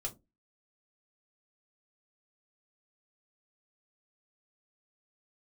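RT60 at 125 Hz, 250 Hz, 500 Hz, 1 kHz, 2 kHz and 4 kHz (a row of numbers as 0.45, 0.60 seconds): 0.30, 0.30, 0.25, 0.20, 0.15, 0.15 seconds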